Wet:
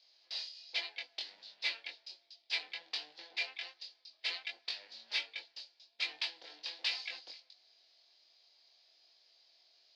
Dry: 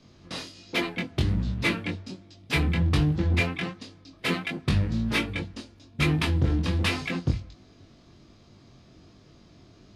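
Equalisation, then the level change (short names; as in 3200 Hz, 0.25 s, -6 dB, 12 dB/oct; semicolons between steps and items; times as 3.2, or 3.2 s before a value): HPF 720 Hz 24 dB/oct; ladder low-pass 5100 Hz, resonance 65%; bell 1200 Hz -14.5 dB 0.75 oct; +1.5 dB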